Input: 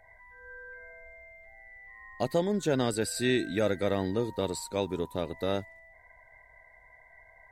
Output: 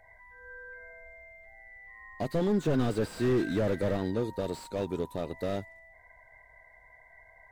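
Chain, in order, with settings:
0:02.41–0:03.97: leveller curve on the samples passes 1
slew-rate limiting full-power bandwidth 27 Hz

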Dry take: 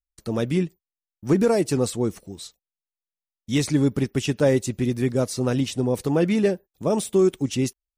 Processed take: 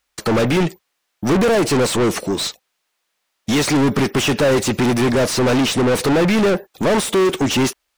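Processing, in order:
mid-hump overdrive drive 37 dB, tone 3,000 Hz, clips at −9 dBFS

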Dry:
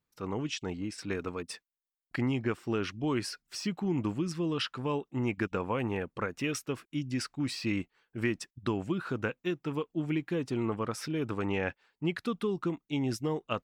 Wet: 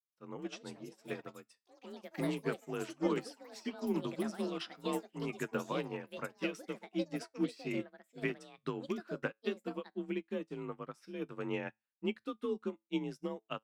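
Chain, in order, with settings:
delay with pitch and tempo change per echo 299 ms, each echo +6 semitones, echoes 3, each echo −6 dB
frequency shifter +37 Hz
tuned comb filter 110 Hz, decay 0.25 s, harmonics all, mix 60%
expander for the loud parts 2.5 to 1, over −50 dBFS
level +4 dB

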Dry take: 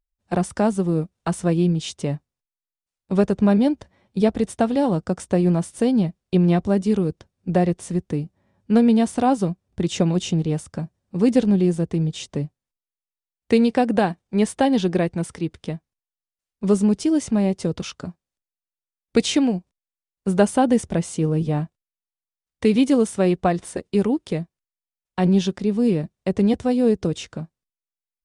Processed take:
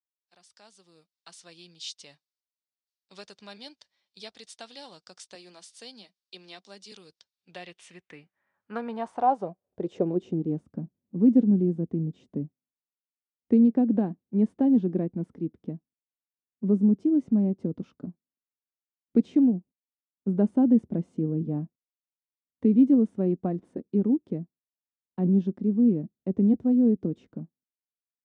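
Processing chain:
fade in at the beginning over 2.15 s
0:05.35–0:06.92: elliptic high-pass filter 190 Hz
band-pass filter sweep 4,500 Hz → 250 Hz, 0:07.25–0:10.63

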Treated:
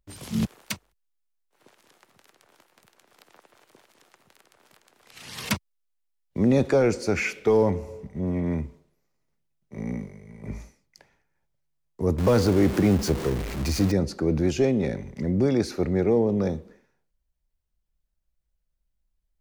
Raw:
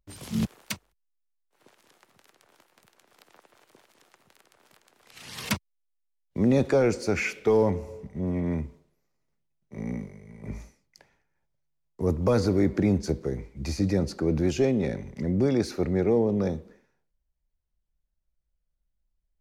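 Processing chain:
0:12.18–0:13.92: converter with a step at zero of −29 dBFS
level +1.5 dB

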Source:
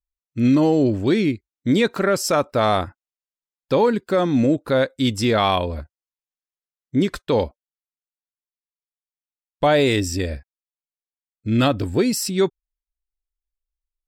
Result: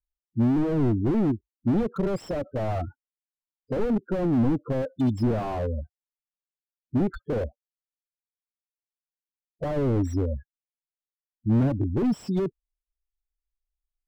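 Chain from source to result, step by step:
spectral peaks only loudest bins 8
slew-rate limiting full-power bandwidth 25 Hz

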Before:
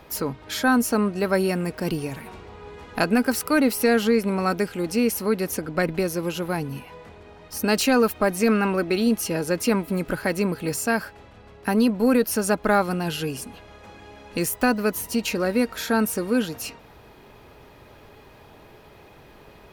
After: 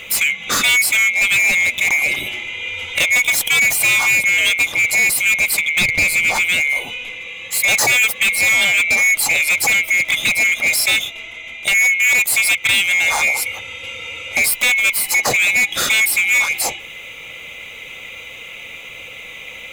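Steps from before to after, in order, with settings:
neighbouring bands swapped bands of 2,000 Hz
0:05.81–0:06.40: low-shelf EQ 340 Hz +11.5 dB
in parallel at +1 dB: downward compressor, threshold −27 dBFS, peak gain reduction 12.5 dB
on the sum: hard clipping −20 dBFS, distortion −7 dB
level +8 dB

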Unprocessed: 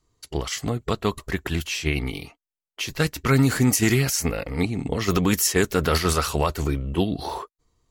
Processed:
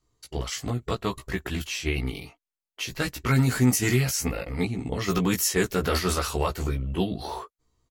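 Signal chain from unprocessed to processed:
double-tracking delay 16 ms −3 dB
level −5 dB

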